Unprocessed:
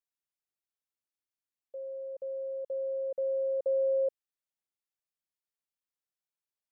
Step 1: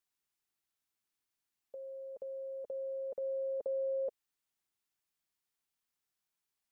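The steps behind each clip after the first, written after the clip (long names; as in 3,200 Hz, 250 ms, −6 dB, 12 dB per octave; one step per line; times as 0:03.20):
parametric band 540 Hz −11.5 dB 0.24 octaves
in parallel at −1 dB: brickwall limiter −38.5 dBFS, peak gain reduction 8 dB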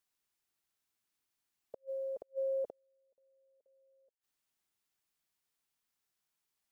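gate with flip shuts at −37 dBFS, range −38 dB
expander for the loud parts 1.5 to 1, over −55 dBFS
level +8.5 dB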